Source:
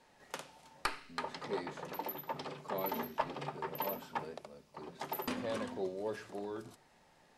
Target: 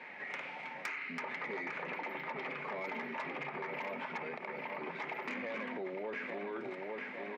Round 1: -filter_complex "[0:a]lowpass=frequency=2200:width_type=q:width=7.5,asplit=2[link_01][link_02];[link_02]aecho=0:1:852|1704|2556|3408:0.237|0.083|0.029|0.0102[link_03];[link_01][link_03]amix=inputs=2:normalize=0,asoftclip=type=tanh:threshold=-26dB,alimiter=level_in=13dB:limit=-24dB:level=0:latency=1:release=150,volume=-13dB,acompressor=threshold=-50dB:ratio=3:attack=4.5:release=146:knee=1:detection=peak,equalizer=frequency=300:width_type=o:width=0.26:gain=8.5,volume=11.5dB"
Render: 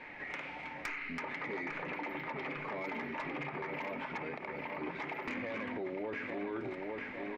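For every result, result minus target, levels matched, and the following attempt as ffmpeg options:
125 Hz band +5.0 dB; 250 Hz band +3.5 dB
-filter_complex "[0:a]lowpass=frequency=2200:width_type=q:width=7.5,asplit=2[link_01][link_02];[link_02]aecho=0:1:852|1704|2556|3408:0.237|0.083|0.029|0.0102[link_03];[link_01][link_03]amix=inputs=2:normalize=0,asoftclip=type=tanh:threshold=-26dB,alimiter=level_in=13dB:limit=-24dB:level=0:latency=1:release=150,volume=-13dB,acompressor=threshold=-50dB:ratio=3:attack=4.5:release=146:knee=1:detection=peak,highpass=frequency=170:width=0.5412,highpass=frequency=170:width=1.3066,equalizer=frequency=300:width_type=o:width=0.26:gain=8.5,volume=11.5dB"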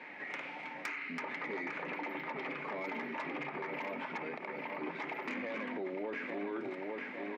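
250 Hz band +3.5 dB
-filter_complex "[0:a]lowpass=frequency=2200:width_type=q:width=7.5,asplit=2[link_01][link_02];[link_02]aecho=0:1:852|1704|2556|3408:0.237|0.083|0.029|0.0102[link_03];[link_01][link_03]amix=inputs=2:normalize=0,asoftclip=type=tanh:threshold=-26dB,alimiter=level_in=13dB:limit=-24dB:level=0:latency=1:release=150,volume=-13dB,acompressor=threshold=-50dB:ratio=3:attack=4.5:release=146:knee=1:detection=peak,highpass=frequency=170:width=0.5412,highpass=frequency=170:width=1.3066,equalizer=frequency=300:width_type=o:width=0.26:gain=-2,volume=11.5dB"

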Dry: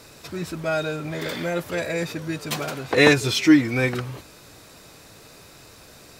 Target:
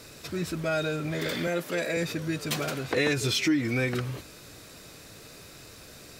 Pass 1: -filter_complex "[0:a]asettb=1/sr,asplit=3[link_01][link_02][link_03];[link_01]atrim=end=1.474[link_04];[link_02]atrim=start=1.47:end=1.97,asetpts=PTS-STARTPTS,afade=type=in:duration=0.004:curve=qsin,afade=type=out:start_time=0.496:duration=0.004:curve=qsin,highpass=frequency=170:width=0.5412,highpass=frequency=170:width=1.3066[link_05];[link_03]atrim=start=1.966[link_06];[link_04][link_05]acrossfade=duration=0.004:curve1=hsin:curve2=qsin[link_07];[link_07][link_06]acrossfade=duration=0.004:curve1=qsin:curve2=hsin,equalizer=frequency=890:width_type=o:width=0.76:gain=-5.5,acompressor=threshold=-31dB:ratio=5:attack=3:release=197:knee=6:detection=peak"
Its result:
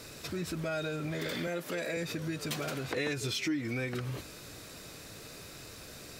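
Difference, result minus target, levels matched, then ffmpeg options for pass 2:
downward compressor: peak gain reduction +8 dB
-filter_complex "[0:a]asettb=1/sr,asplit=3[link_01][link_02][link_03];[link_01]atrim=end=1.474[link_04];[link_02]atrim=start=1.47:end=1.97,asetpts=PTS-STARTPTS,afade=type=in:duration=0.004:curve=qsin,afade=type=out:start_time=0.496:duration=0.004:curve=qsin,highpass=frequency=170:width=0.5412,highpass=frequency=170:width=1.3066[link_05];[link_03]atrim=start=1.966[link_06];[link_04][link_05]acrossfade=duration=0.004:curve1=hsin:curve2=qsin[link_07];[link_07][link_06]acrossfade=duration=0.004:curve1=qsin:curve2=hsin,equalizer=frequency=890:width_type=o:width=0.76:gain=-5.5,acompressor=threshold=-21dB:ratio=5:attack=3:release=197:knee=6:detection=peak"

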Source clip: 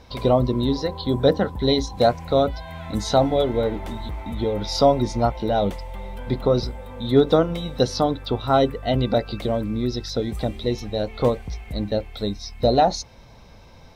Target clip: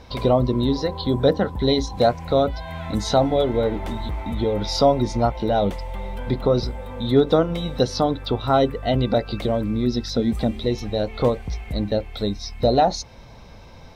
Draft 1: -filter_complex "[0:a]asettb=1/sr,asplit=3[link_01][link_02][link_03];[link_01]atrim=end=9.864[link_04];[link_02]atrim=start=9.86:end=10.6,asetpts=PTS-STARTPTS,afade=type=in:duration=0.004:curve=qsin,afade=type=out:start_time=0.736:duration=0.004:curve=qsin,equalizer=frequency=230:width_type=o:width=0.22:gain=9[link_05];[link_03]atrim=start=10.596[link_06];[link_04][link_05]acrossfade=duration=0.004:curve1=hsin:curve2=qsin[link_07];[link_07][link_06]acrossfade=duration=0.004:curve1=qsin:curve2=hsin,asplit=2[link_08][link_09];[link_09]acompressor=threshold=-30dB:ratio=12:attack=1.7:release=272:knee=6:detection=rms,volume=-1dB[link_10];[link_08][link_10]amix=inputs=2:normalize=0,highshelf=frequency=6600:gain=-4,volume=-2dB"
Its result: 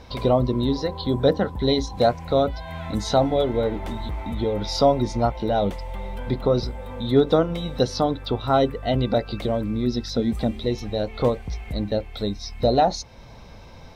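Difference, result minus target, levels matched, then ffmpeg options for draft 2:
downward compressor: peak gain reduction +8 dB
-filter_complex "[0:a]asettb=1/sr,asplit=3[link_01][link_02][link_03];[link_01]atrim=end=9.864[link_04];[link_02]atrim=start=9.86:end=10.6,asetpts=PTS-STARTPTS,afade=type=in:duration=0.004:curve=qsin,afade=type=out:start_time=0.736:duration=0.004:curve=qsin,equalizer=frequency=230:width_type=o:width=0.22:gain=9[link_05];[link_03]atrim=start=10.596[link_06];[link_04][link_05]acrossfade=duration=0.004:curve1=hsin:curve2=qsin[link_07];[link_07][link_06]acrossfade=duration=0.004:curve1=qsin:curve2=hsin,asplit=2[link_08][link_09];[link_09]acompressor=threshold=-21dB:ratio=12:attack=1.7:release=272:knee=6:detection=rms,volume=-1dB[link_10];[link_08][link_10]amix=inputs=2:normalize=0,highshelf=frequency=6600:gain=-4,volume=-2dB"

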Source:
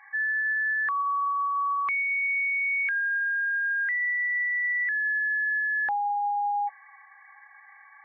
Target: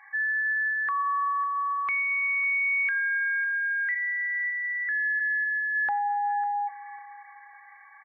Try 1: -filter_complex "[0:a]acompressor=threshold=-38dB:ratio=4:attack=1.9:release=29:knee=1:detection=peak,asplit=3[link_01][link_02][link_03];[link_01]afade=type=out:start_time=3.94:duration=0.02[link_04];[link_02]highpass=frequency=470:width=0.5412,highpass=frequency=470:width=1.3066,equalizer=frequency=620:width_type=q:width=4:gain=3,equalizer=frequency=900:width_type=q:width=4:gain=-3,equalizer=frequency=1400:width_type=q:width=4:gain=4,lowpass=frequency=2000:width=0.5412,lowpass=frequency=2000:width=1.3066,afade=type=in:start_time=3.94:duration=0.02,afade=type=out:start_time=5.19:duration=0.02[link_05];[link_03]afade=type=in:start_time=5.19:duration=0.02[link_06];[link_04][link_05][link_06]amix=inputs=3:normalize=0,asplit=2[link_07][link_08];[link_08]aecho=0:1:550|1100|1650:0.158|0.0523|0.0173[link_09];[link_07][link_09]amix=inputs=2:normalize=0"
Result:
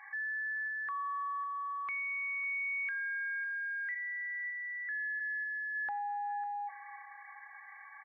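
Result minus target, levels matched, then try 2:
downward compressor: peak gain reduction +11 dB
-filter_complex "[0:a]asplit=3[link_01][link_02][link_03];[link_01]afade=type=out:start_time=3.94:duration=0.02[link_04];[link_02]highpass=frequency=470:width=0.5412,highpass=frequency=470:width=1.3066,equalizer=frequency=620:width_type=q:width=4:gain=3,equalizer=frequency=900:width_type=q:width=4:gain=-3,equalizer=frequency=1400:width_type=q:width=4:gain=4,lowpass=frequency=2000:width=0.5412,lowpass=frequency=2000:width=1.3066,afade=type=in:start_time=3.94:duration=0.02,afade=type=out:start_time=5.19:duration=0.02[link_05];[link_03]afade=type=in:start_time=5.19:duration=0.02[link_06];[link_04][link_05][link_06]amix=inputs=3:normalize=0,asplit=2[link_07][link_08];[link_08]aecho=0:1:550|1100|1650:0.158|0.0523|0.0173[link_09];[link_07][link_09]amix=inputs=2:normalize=0"

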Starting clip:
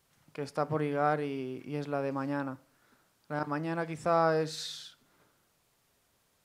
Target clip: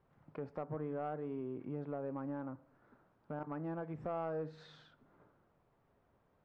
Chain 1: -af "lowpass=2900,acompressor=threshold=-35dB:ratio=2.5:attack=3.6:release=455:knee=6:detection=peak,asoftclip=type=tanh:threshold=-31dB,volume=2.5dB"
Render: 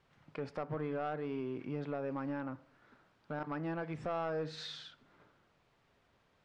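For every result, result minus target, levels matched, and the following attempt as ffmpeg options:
4,000 Hz band +14.0 dB; downward compressor: peak gain reduction −2.5 dB
-af "lowpass=1100,acompressor=threshold=-35dB:ratio=2.5:attack=3.6:release=455:knee=6:detection=peak,asoftclip=type=tanh:threshold=-31dB,volume=2.5dB"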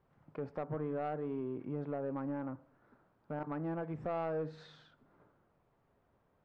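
downward compressor: peak gain reduction −3.5 dB
-af "lowpass=1100,acompressor=threshold=-41dB:ratio=2.5:attack=3.6:release=455:knee=6:detection=peak,asoftclip=type=tanh:threshold=-31dB,volume=2.5dB"

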